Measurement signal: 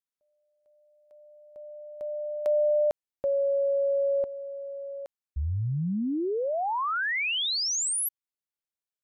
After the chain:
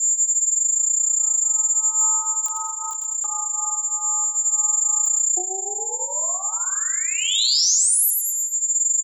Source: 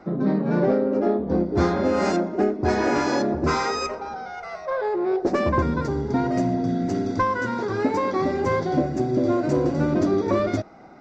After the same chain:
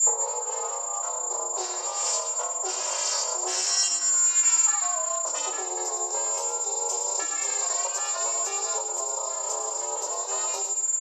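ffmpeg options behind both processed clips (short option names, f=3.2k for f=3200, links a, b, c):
-filter_complex "[0:a]aeval=exprs='val(0)+0.0112*sin(2*PI*6700*n/s)':c=same,adynamicequalizer=threshold=0.0158:dfrequency=980:dqfactor=0.72:tfrequency=980:tqfactor=0.72:attack=5:release=100:ratio=0.375:range=2.5:mode=cutabove:tftype=bell,aecho=1:1:109|218|327|436:0.398|0.139|0.0488|0.0171,crystalizer=i=1:c=0,lowshelf=f=76:g=8,acompressor=threshold=-29dB:ratio=10:attack=46:release=936:knee=1:detection=rms,afreqshift=480,flanger=delay=18.5:depth=5.6:speed=0.24,aexciter=amount=5.9:drive=6.2:freq=3k,aeval=exprs='val(0)*sin(2*PI*190*n/s)':c=same,acrossover=split=150|2600[a][b][c];[b]acompressor=threshold=-30dB:ratio=6:attack=14:release=298:knee=2.83:detection=peak[d];[a][d][c]amix=inputs=3:normalize=0,alimiter=level_in=11dB:limit=-1dB:release=50:level=0:latency=1,volume=-7dB"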